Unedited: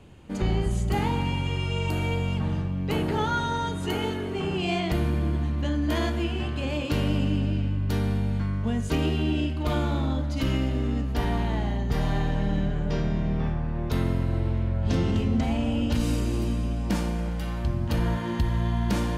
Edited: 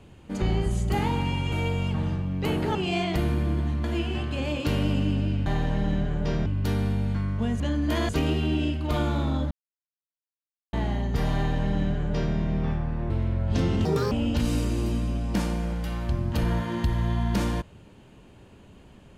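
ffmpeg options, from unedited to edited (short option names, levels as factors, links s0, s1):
-filter_complex "[0:a]asplit=13[s0][s1][s2][s3][s4][s5][s6][s7][s8][s9][s10][s11][s12];[s0]atrim=end=1.522[s13];[s1]atrim=start=1.978:end=3.212[s14];[s2]atrim=start=4.508:end=5.602[s15];[s3]atrim=start=6.088:end=7.712[s16];[s4]atrim=start=12.108:end=13.112[s17];[s5]atrim=start=7.708:end=8.852[s18];[s6]atrim=start=5.598:end=6.092[s19];[s7]atrim=start=8.848:end=10.27,asetpts=PTS-STARTPTS,afade=t=out:st=1.418:d=0.004:c=hsin[s20];[s8]atrim=start=10.27:end=11.49,asetpts=PTS-STARTPTS,volume=0[s21];[s9]atrim=start=11.49:end=13.862,asetpts=PTS-STARTPTS,afade=t=in:d=0.004:c=hsin[s22];[s10]atrim=start=14.448:end=15.204[s23];[s11]atrim=start=15.2:end=15.67,asetpts=PTS-STARTPTS,asetrate=78498,aresample=44100,atrim=end_sample=11644,asetpts=PTS-STARTPTS[s24];[s12]atrim=start=15.666[s25];[s13][s14]acrossfade=d=0.004:c1=hsin:c2=hsin[s26];[s26][s15]acrossfade=d=0.004:c1=hsin:c2=hsin[s27];[s27][s16]acrossfade=d=0.004:c1=hsin:c2=hsin[s28];[s28][s17]acrossfade=d=0.004:c1=hsin:c2=hsin[s29];[s29][s18]acrossfade=d=0.004:c1=hsin:c2=hsin[s30];[s30][s19]acrossfade=d=0.004:c1=hsin:c2=hsin[s31];[s20][s21][s22]concat=n=3:v=0:a=1[s32];[s31][s32]acrossfade=d=0.004:c1=hsin:c2=hsin[s33];[s33][s23]acrossfade=d=0.004:c1=hsin:c2=hsin[s34];[s34][s24]acrossfade=d=0.004:c1=hsin:c2=hsin[s35];[s35][s25]acrossfade=d=0.004:c1=hsin:c2=hsin"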